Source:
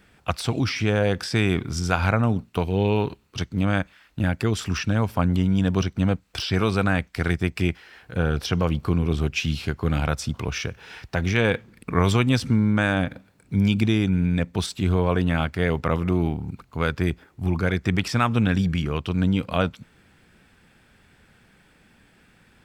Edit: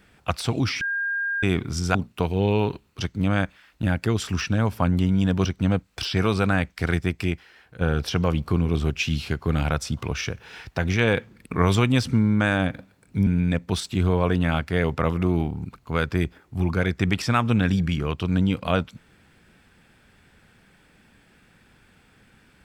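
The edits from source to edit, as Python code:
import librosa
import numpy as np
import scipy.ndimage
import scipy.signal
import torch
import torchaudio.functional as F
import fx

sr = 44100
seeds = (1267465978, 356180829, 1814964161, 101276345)

y = fx.edit(x, sr, fx.bleep(start_s=0.81, length_s=0.62, hz=1610.0, db=-23.0),
    fx.cut(start_s=1.95, length_s=0.37),
    fx.fade_out_to(start_s=7.33, length_s=0.85, floor_db=-8.0),
    fx.cut(start_s=13.64, length_s=0.49), tone=tone)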